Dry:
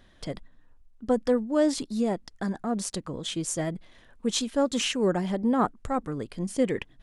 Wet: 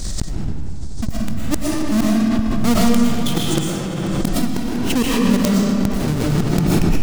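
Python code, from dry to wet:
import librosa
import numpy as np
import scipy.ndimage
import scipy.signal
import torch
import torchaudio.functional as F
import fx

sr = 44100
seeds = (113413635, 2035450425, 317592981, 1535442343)

p1 = fx.halfwave_hold(x, sr)
p2 = fx.dmg_noise_band(p1, sr, seeds[0], low_hz=3600.0, high_hz=8700.0, level_db=-56.0)
p3 = fx.high_shelf(p2, sr, hz=7100.0, db=-6.5)
p4 = fx.transient(p3, sr, attack_db=9, sustain_db=-10)
p5 = (np.mod(10.0 ** (12.0 / 20.0) * p4 + 1.0, 2.0) - 1.0) / 10.0 ** (12.0 / 20.0)
p6 = fx.bass_treble(p5, sr, bass_db=12, treble_db=9)
p7 = fx.gate_flip(p6, sr, shuts_db=-4.0, range_db=-31)
p8 = p7 + fx.echo_feedback(p7, sr, ms=243, feedback_pct=51, wet_db=-18, dry=0)
p9 = fx.rev_freeverb(p8, sr, rt60_s=2.5, hf_ratio=0.65, predelay_ms=75, drr_db=-4.5)
p10 = fx.pre_swell(p9, sr, db_per_s=22.0)
y = p10 * librosa.db_to_amplitude(-2.5)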